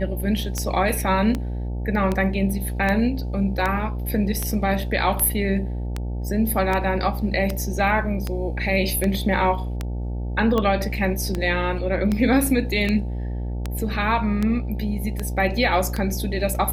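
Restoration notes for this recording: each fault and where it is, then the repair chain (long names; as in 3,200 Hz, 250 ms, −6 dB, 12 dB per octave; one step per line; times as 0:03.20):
mains buzz 60 Hz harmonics 15 −27 dBFS
scratch tick 78 rpm −11 dBFS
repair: click removal
hum removal 60 Hz, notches 15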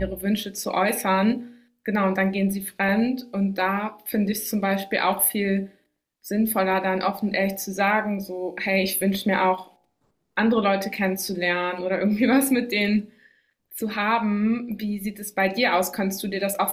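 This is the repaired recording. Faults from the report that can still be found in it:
none of them is left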